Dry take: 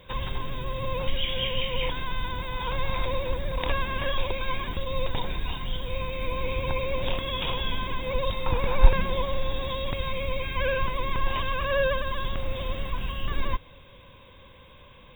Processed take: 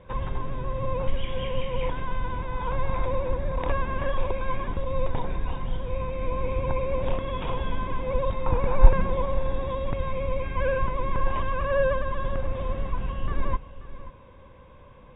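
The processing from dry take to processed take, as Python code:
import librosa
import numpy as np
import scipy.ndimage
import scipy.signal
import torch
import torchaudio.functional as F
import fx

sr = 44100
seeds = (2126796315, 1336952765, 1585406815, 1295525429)

p1 = scipy.signal.sosfilt(scipy.signal.butter(2, 1400.0, 'lowpass', fs=sr, output='sos'), x)
p2 = p1 + fx.echo_single(p1, sr, ms=534, db=-15.5, dry=0)
y = p2 * 10.0 ** (2.0 / 20.0)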